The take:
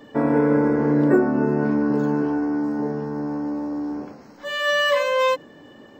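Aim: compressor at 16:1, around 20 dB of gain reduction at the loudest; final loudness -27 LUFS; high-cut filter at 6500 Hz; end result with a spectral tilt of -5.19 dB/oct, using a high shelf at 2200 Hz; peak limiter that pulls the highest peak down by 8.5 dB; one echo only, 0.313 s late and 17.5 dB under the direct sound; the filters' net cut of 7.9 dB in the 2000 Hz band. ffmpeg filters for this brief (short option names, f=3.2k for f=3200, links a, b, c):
-af "lowpass=6.5k,equalizer=f=2k:t=o:g=-7,highshelf=f=2.2k:g=-6,acompressor=threshold=-32dB:ratio=16,alimiter=level_in=5.5dB:limit=-24dB:level=0:latency=1,volume=-5.5dB,aecho=1:1:313:0.133,volume=10.5dB"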